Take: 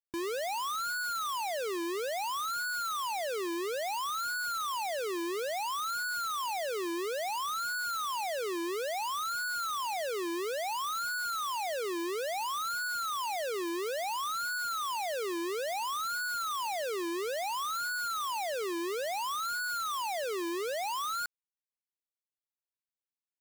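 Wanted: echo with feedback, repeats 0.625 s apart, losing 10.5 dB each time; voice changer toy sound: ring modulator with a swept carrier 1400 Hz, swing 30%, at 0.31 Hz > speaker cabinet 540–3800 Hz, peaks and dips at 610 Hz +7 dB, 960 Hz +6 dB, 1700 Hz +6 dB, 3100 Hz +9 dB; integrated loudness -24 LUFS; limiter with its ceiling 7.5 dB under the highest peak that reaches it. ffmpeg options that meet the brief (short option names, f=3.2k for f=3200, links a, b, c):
-af "alimiter=level_in=17.5dB:limit=-24dB:level=0:latency=1,volume=-17.5dB,aecho=1:1:625|1250|1875:0.299|0.0896|0.0269,aeval=exprs='val(0)*sin(2*PI*1400*n/s+1400*0.3/0.31*sin(2*PI*0.31*n/s))':c=same,highpass=540,equalizer=f=610:t=q:w=4:g=7,equalizer=f=960:t=q:w=4:g=6,equalizer=f=1.7k:t=q:w=4:g=6,equalizer=f=3.1k:t=q:w=4:g=9,lowpass=f=3.8k:w=0.5412,lowpass=f=3.8k:w=1.3066,volume=15.5dB"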